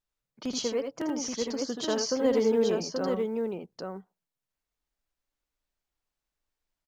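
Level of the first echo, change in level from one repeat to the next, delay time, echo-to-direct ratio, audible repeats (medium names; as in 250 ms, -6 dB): -6.0 dB, no regular repeats, 78 ms, -1.5 dB, 2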